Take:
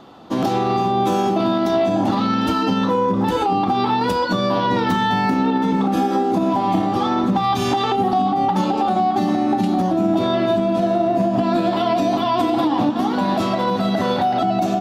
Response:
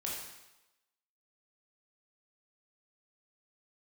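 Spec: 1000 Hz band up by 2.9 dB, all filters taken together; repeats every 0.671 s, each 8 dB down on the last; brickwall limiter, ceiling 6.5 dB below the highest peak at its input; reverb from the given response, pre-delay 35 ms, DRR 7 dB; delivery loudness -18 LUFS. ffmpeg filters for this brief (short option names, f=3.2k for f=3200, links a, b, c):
-filter_complex "[0:a]equalizer=f=1k:t=o:g=4,alimiter=limit=-12dB:level=0:latency=1,aecho=1:1:671|1342|2013|2684|3355:0.398|0.159|0.0637|0.0255|0.0102,asplit=2[a][b];[1:a]atrim=start_sample=2205,adelay=35[c];[b][c]afir=irnorm=-1:irlink=0,volume=-9dB[d];[a][d]amix=inputs=2:normalize=0,volume=0.5dB"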